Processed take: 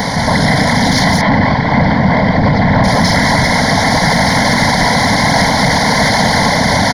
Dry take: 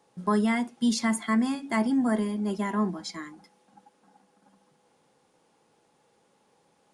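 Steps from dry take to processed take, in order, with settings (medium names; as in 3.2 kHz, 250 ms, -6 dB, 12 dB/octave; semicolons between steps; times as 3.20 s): spectral levelling over time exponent 0.2; in parallel at +2 dB: level held to a coarse grid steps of 16 dB; on the sum: feedback delay 193 ms, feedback 55%, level -5.5 dB; whisper effect; 1.21–2.84 s: distance through air 300 m; level rider; saturation -6.5 dBFS, distortion -19 dB; static phaser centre 1.8 kHz, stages 8; loudness maximiser +11 dB; trim -1 dB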